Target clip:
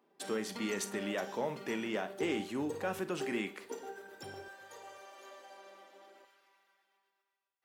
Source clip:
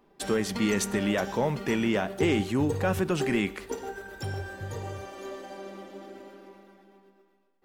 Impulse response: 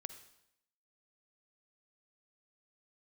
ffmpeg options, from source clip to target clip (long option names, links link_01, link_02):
-filter_complex "[0:a]asetnsamples=nb_out_samples=441:pad=0,asendcmd='4.48 highpass f 680;6.25 highpass f 1400',highpass=240[link_01];[1:a]atrim=start_sample=2205,afade=type=out:start_time=0.15:duration=0.01,atrim=end_sample=7056,asetrate=70560,aresample=44100[link_02];[link_01][link_02]afir=irnorm=-1:irlink=0"